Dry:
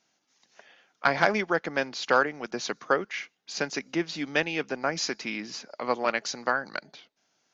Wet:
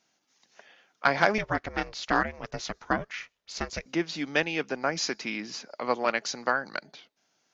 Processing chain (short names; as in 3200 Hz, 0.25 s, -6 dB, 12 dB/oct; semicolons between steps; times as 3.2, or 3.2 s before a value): 1.38–3.86 ring modulator 220 Hz